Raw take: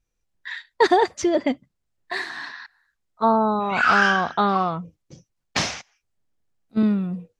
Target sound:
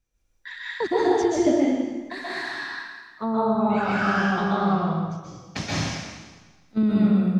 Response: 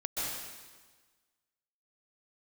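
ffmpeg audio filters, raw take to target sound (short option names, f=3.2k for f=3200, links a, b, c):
-filter_complex "[0:a]acrossover=split=340[a][b];[b]acompressor=threshold=-36dB:ratio=2.5[c];[a][c]amix=inputs=2:normalize=0[d];[1:a]atrim=start_sample=2205[e];[d][e]afir=irnorm=-1:irlink=0,volume=1dB"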